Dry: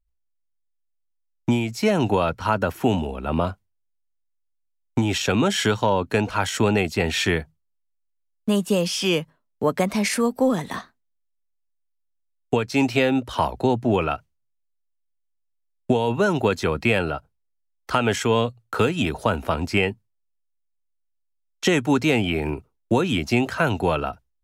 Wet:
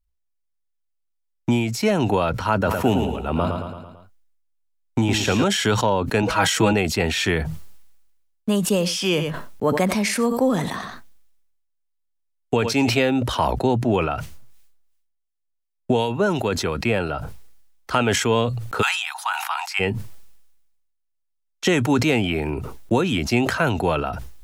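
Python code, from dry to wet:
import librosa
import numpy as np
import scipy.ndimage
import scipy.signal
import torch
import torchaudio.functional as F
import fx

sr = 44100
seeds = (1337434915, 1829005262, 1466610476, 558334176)

y = fx.echo_feedback(x, sr, ms=111, feedback_pct=44, wet_db=-7, at=(2.64, 5.43), fade=0.02)
y = fx.comb(y, sr, ms=6.2, depth=0.98, at=(6.22, 6.73))
y = fx.echo_single(y, sr, ms=91, db=-18.0, at=(8.66, 12.89))
y = fx.harmonic_tremolo(y, sr, hz=2.8, depth_pct=50, crossover_hz=1400.0, at=(14.08, 17.09))
y = fx.steep_highpass(y, sr, hz=760.0, slope=96, at=(18.81, 19.79), fade=0.02)
y = fx.sustainer(y, sr, db_per_s=47.0)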